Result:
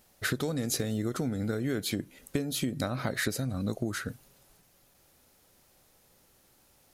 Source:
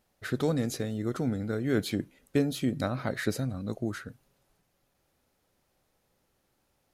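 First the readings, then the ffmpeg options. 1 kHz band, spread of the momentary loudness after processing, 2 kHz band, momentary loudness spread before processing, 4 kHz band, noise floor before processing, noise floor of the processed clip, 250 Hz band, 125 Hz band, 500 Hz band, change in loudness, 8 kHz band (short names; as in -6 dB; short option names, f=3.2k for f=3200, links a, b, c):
-0.5 dB, 6 LU, +2.5 dB, 7 LU, +4.0 dB, -75 dBFS, -64 dBFS, -2.0 dB, -1.0 dB, -3.0 dB, -1.0 dB, +7.0 dB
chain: -af "acompressor=threshold=-34dB:ratio=16,highshelf=f=4.3k:g=8.5,volume=7dB"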